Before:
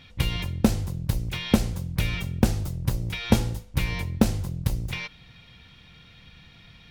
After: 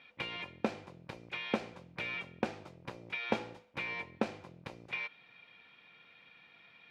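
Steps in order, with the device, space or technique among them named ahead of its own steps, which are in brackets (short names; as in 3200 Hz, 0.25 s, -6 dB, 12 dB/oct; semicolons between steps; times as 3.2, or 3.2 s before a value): tin-can telephone (BPF 410–2500 Hz; small resonant body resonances 2400 Hz, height 12 dB, ringing for 45 ms); gain -5 dB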